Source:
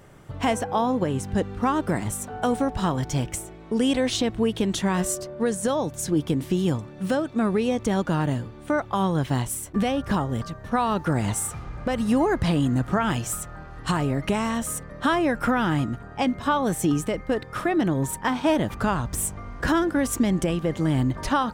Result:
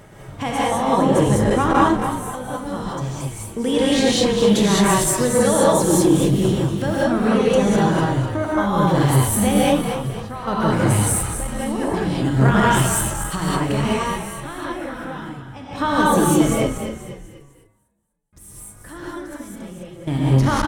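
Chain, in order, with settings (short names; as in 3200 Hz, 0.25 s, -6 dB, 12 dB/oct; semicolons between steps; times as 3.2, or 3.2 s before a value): reverse; upward compressor, threshold -30 dBFS; reverse; random-step tremolo 1.1 Hz, depth 100%; on a send: frequency-shifting echo 0.257 s, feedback 40%, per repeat -38 Hz, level -8.5 dB; on the sum: non-linear reverb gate 0.24 s rising, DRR -6.5 dB; speed mistake 24 fps film run at 25 fps; core saturation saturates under 320 Hz; gain +2.5 dB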